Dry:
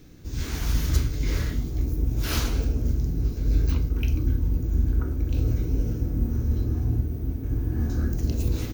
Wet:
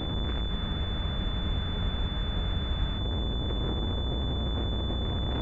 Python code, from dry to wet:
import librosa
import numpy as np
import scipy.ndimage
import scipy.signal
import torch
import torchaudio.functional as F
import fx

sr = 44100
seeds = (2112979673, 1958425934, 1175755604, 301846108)

y = fx.peak_eq(x, sr, hz=71.0, db=6.5, octaves=0.55)
y = fx.over_compress(y, sr, threshold_db=-29.0, ratio=-1.0)
y = fx.fuzz(y, sr, gain_db=37.0, gate_db=-45.0)
y = fx.stretch_grains(y, sr, factor=0.62, grain_ms=68.0)
y = np.clip(10.0 ** (24.5 / 20.0) * y, -1.0, 1.0) / 10.0 ** (24.5 / 20.0)
y = fx.echo_thinned(y, sr, ms=716, feedback_pct=71, hz=420.0, wet_db=-8)
y = fx.spec_freeze(y, sr, seeds[0], at_s=0.51, hold_s=2.47)
y = fx.pwm(y, sr, carrier_hz=3500.0)
y = y * 10.0 ** (-4.0 / 20.0)